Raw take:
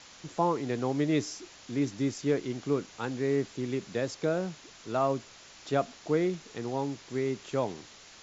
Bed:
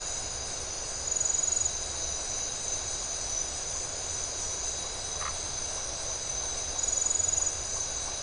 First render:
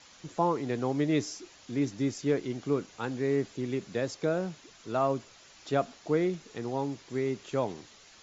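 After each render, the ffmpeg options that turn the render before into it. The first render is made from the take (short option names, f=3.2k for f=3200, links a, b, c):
-af "afftdn=nr=6:nf=-53"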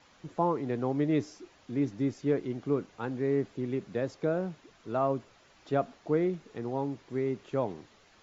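-af "lowpass=f=1.5k:p=1"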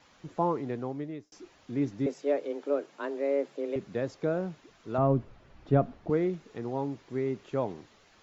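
-filter_complex "[0:a]asettb=1/sr,asplit=3[a][b][c];[a]atrim=end=2.064[d];[b]atrim=start=2.06:end=3.76,asetpts=PTS-STARTPTS,afade=t=in:d=0.004:c=qsin,afade=t=out:st=1.696:d=0.004:c=qsin,afreqshift=140[e];[c]atrim=start=3.756[f];[d][e]acrossfade=d=0.004:c1=hsin:c2=qsin[g];[g][f]acrossfade=d=0.004:c1=qsin:c2=hsin,asettb=1/sr,asplit=3[h][i][j];[h]atrim=end=4.984[k];[i]atrim=start=4.98:end=6.1,asetpts=PTS-STARTPTS,afade=t=in:d=0.004:c=qsin,afade=t=out:st=1.116:d=0.004:c=qsin,aemphasis=mode=reproduction:type=riaa[l];[j]atrim=start=6.096[m];[k][l]acrossfade=d=0.004:c1=hsin:c2=qsin[n];[n][m]acrossfade=d=0.004:c1=qsin:c2=hsin,asplit=2[o][p];[o]atrim=end=1.32,asetpts=PTS-STARTPTS,afade=t=out:st=0.55:d=0.77[q];[p]atrim=start=1.32,asetpts=PTS-STARTPTS,afade=t=in:d=0.004:c=hsin[r];[q][r]concat=n=2:v=0:a=1"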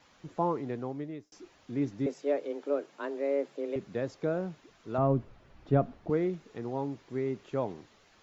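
-af "volume=-1.5dB"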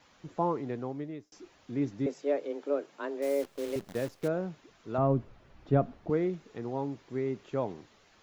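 -filter_complex "[0:a]asettb=1/sr,asplit=3[a][b][c];[a]atrim=end=3.224[d];[b]atrim=start=3.22:end=4.28,asetpts=PTS-STARTPTS,afade=t=in:d=0.004:c=qsin,afade=t=out:st=1.056:d=0.004:c=qsin,acrusher=bits=8:dc=4:mix=0:aa=0.000001[e];[c]atrim=start=4.276[f];[d][e]acrossfade=d=0.004:c1=hsin:c2=qsin[g];[g][f]acrossfade=d=0.004:c1=qsin:c2=hsin"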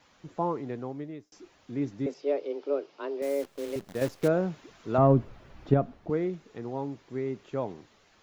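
-filter_complex "[0:a]asettb=1/sr,asplit=3[a][b][c];[a]atrim=end=2.144[d];[b]atrim=start=2.14:end=3.22,asetpts=PTS-STARTPTS,afade=t=in:d=0.004:c=qsin,afade=t=out:st=1.076:d=0.004:c=qsin,highpass=140,equalizer=f=220:t=q:w=4:g=-8,equalizer=f=390:t=q:w=4:g=5,equalizer=f=1.7k:t=q:w=4:g=-6,equalizer=f=2.8k:t=q:w=4:g=3,equalizer=f=5k:t=q:w=4:g=6,lowpass=f=5.5k:w=0.5412,lowpass=f=5.5k:w=1.3066[e];[c]atrim=start=3.216[f];[d][e]acrossfade=d=0.004:c1=hsin:c2=qsin[g];[g][f]acrossfade=d=0.004:c1=qsin:c2=hsin,asettb=1/sr,asplit=3[h][i][j];[h]atrim=end=4.014[k];[i]atrim=start=4.01:end=5.74,asetpts=PTS-STARTPTS,afade=t=in:d=0.004:c=qsin,afade=t=out:st=1.726:d=0.004:c=qsin,acontrast=58[l];[j]atrim=start=5.736[m];[k][l]acrossfade=d=0.004:c1=hsin:c2=qsin[n];[n][m]acrossfade=d=0.004:c1=qsin:c2=hsin"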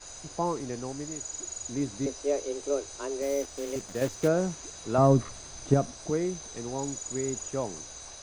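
-filter_complex "[1:a]volume=-10.5dB[a];[0:a][a]amix=inputs=2:normalize=0"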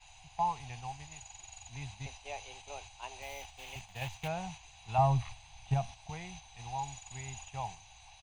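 -af "agate=range=-6dB:threshold=-37dB:ratio=16:detection=peak,firequalizer=gain_entry='entry(110,0);entry(290,-30);entry(560,-21);entry(790,6);entry(1300,-15);entry(2600,8);entry(5100,-13);entry(14000,-7)':delay=0.05:min_phase=1"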